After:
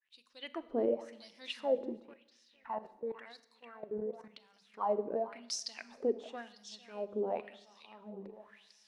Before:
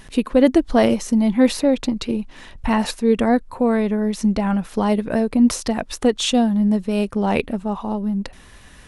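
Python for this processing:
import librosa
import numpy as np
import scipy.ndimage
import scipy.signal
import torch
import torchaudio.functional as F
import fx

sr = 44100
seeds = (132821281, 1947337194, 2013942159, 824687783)

y = fx.fade_in_head(x, sr, length_s=0.58)
y = fx.hum_notches(y, sr, base_hz=50, count=5)
y = fx.echo_feedback(y, sr, ms=449, feedback_pct=43, wet_db=-14.5)
y = fx.filter_lfo_bandpass(y, sr, shape='sine', hz=0.94, low_hz=370.0, high_hz=5600.0, q=5.9)
y = fx.level_steps(y, sr, step_db=16, at=(2.0, 4.74))
y = fx.rev_schroeder(y, sr, rt60_s=0.86, comb_ms=30, drr_db=15.0)
y = F.gain(torch.from_numpy(y), -4.0).numpy()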